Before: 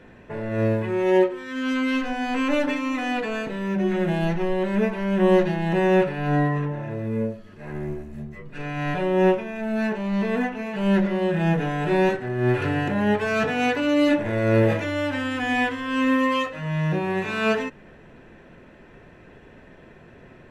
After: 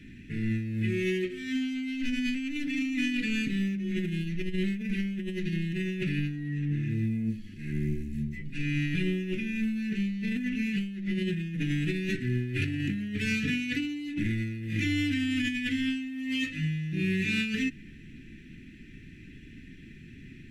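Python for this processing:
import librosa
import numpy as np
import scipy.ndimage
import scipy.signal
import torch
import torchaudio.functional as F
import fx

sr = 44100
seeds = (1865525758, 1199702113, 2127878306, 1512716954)

y = scipy.signal.sosfilt(scipy.signal.cheby1(3, 1.0, [290.0, 2100.0], 'bandstop', fs=sr, output='sos'), x)
y = fx.over_compress(y, sr, threshold_db=-30.0, ratio=-1.0)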